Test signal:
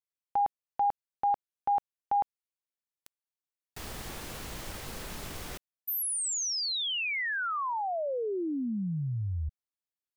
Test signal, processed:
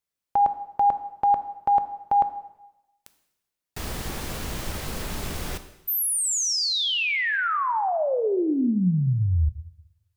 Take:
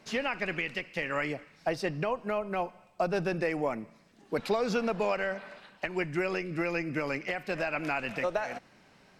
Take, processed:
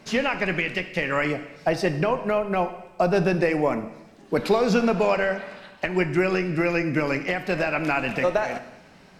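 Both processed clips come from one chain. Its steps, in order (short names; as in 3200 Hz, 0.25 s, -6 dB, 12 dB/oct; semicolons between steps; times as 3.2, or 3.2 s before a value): low shelf 340 Hz +4 dB; plate-style reverb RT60 0.96 s, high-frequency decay 1×, DRR 9.5 dB; gain +6.5 dB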